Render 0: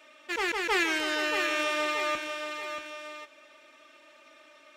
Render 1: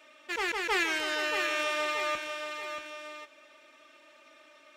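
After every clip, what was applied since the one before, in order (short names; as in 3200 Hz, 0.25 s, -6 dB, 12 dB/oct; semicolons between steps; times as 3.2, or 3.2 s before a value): dynamic EQ 290 Hz, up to -6 dB, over -52 dBFS, Q 3.2; gain -1.5 dB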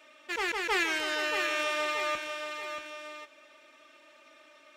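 nothing audible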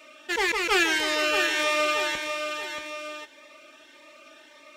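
cascading phaser rising 1.7 Hz; gain +8.5 dB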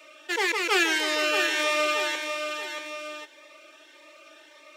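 Chebyshev high-pass 300 Hz, order 5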